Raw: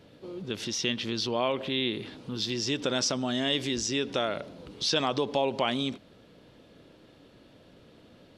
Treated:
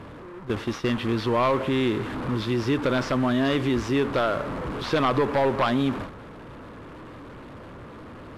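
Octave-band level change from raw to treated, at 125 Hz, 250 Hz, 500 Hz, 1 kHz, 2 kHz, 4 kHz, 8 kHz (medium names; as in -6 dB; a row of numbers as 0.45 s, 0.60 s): +10.0 dB, +7.5 dB, +6.0 dB, +7.5 dB, +5.0 dB, -5.0 dB, -11.5 dB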